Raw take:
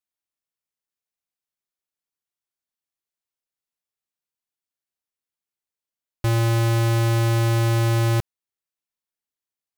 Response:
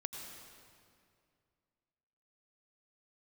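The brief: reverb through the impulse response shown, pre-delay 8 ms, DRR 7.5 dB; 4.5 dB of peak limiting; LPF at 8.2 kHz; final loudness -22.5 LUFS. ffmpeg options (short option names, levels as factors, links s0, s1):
-filter_complex "[0:a]lowpass=8200,alimiter=limit=0.0794:level=0:latency=1,asplit=2[s0][s1];[1:a]atrim=start_sample=2205,adelay=8[s2];[s1][s2]afir=irnorm=-1:irlink=0,volume=0.473[s3];[s0][s3]amix=inputs=2:normalize=0,volume=1.12"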